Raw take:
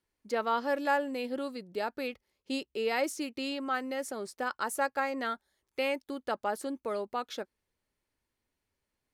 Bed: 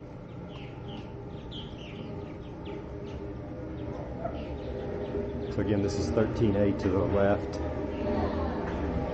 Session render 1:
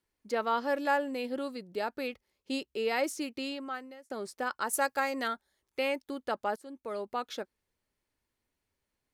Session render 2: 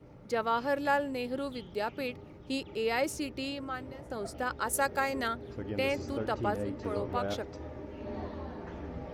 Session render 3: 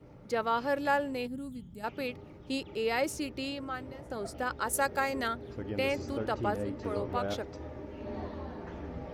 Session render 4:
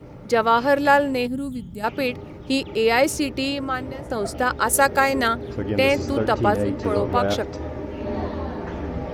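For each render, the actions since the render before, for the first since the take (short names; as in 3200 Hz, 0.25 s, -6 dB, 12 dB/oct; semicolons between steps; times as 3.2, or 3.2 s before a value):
3.35–4.1 fade out; 4.73–5.28 high shelf 3800 Hz +9.5 dB; 6.56–7.12 fade in, from -18.5 dB
add bed -10 dB
1.27–1.84 spectral gain 300–6500 Hz -16 dB
gain +12 dB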